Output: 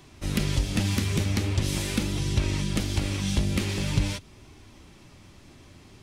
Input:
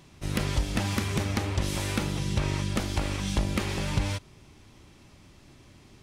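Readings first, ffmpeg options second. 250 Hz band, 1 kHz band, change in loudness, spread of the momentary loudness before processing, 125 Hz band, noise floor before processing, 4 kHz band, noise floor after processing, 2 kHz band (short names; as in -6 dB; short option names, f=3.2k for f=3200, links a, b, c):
+2.5 dB, -4.0 dB, +2.0 dB, 2 LU, +3.0 dB, -55 dBFS, +2.5 dB, -52 dBFS, 0.0 dB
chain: -filter_complex "[0:a]flanger=delay=2.7:depth=9.1:regen=-50:speed=0.44:shape=sinusoidal,acrossover=split=450|2000[a][b][c];[b]acompressor=threshold=-51dB:ratio=4[d];[a][d][c]amix=inputs=3:normalize=0,volume=7dB"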